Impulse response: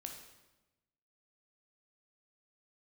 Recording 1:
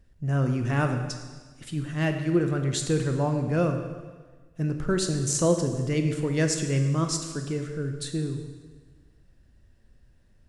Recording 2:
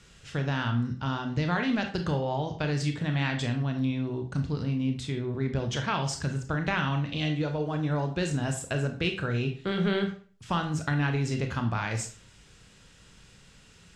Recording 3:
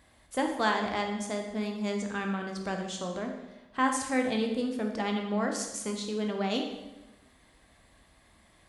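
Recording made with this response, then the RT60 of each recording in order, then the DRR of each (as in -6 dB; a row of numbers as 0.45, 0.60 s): 3; 1.4, 0.40, 1.1 s; 5.5, 4.5, 2.5 dB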